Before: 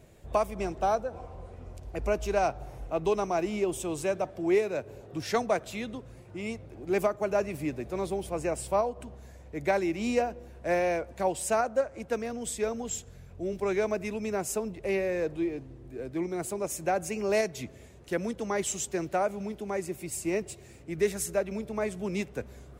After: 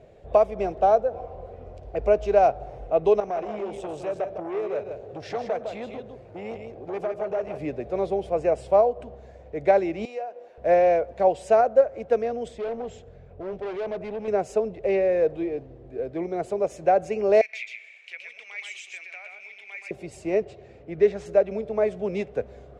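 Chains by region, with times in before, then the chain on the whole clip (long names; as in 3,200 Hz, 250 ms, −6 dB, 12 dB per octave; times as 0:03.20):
0:03.20–0:07.59: downward compressor 3 to 1, threshold −32 dBFS + single-tap delay 158 ms −6.5 dB + saturating transformer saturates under 890 Hz
0:10.05–0:10.58: high-pass filter 560 Hz + downward compressor 2 to 1, threshold −46 dBFS
0:12.48–0:14.28: high-shelf EQ 4,200 Hz −11.5 dB + gain into a clipping stage and back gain 35.5 dB
0:17.41–0:19.91: downward compressor 10 to 1, threshold −34 dBFS + high-pass with resonance 2,300 Hz, resonance Q 12 + single-tap delay 122 ms −4 dB
0:20.44–0:21.26: running median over 3 samples + high-frequency loss of the air 72 metres
whole clip: low-pass filter 3,900 Hz 12 dB per octave; flat-topped bell 560 Hz +9.5 dB 1.1 octaves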